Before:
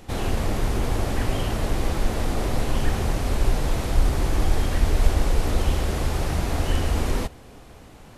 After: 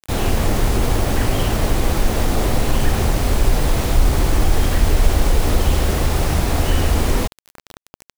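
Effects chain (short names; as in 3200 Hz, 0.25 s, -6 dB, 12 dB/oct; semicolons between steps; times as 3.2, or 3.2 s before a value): in parallel at +1 dB: limiter -14 dBFS, peak gain reduction 9 dB; on the sum: bit-crush 5-bit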